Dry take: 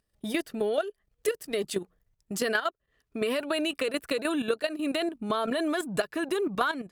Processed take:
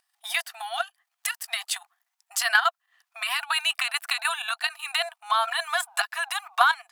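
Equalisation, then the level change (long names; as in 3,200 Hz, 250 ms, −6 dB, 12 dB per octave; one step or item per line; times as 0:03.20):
linear-phase brick-wall high-pass 680 Hz
+8.5 dB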